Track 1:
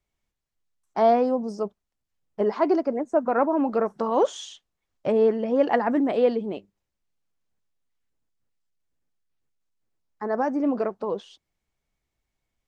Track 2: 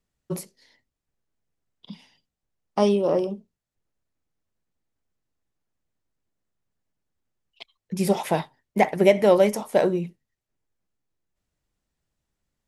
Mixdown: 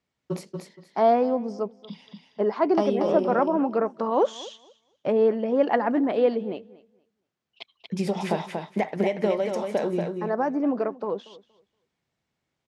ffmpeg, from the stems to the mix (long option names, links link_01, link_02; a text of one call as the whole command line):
ffmpeg -i stem1.wav -i stem2.wav -filter_complex "[0:a]volume=-0.5dB,asplit=2[link_01][link_02];[link_02]volume=-20dB[link_03];[1:a]acompressor=threshold=-23dB:ratio=10,volume=1.5dB,asplit=2[link_04][link_05];[link_05]volume=-5dB[link_06];[link_03][link_06]amix=inputs=2:normalize=0,aecho=0:1:235|470|705:1|0.19|0.0361[link_07];[link_01][link_04][link_07]amix=inputs=3:normalize=0,highpass=130,lowpass=5400" out.wav